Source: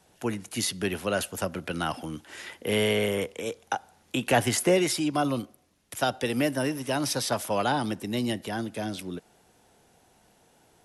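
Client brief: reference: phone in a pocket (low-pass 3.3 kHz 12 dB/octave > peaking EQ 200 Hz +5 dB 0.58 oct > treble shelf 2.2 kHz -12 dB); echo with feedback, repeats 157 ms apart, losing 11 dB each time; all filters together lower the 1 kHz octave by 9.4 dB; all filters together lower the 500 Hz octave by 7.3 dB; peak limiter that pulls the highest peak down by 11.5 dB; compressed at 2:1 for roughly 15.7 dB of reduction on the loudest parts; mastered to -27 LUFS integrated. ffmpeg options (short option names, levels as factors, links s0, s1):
-af "equalizer=f=500:t=o:g=-7,equalizer=f=1000:t=o:g=-8,acompressor=threshold=0.00251:ratio=2,alimiter=level_in=5.31:limit=0.0631:level=0:latency=1,volume=0.188,lowpass=3300,equalizer=f=200:t=o:w=0.58:g=5,highshelf=f=2200:g=-12,aecho=1:1:157|314|471:0.282|0.0789|0.0221,volume=11.2"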